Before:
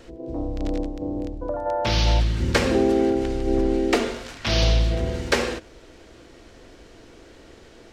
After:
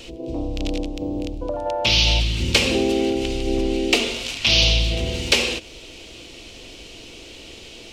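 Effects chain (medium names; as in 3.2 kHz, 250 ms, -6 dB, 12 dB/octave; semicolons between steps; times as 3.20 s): resonant high shelf 2.1 kHz +8 dB, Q 3; in parallel at +2.5 dB: compression, threshold -28 dBFS, peak gain reduction 16 dB; on the sum: trim -3.5 dB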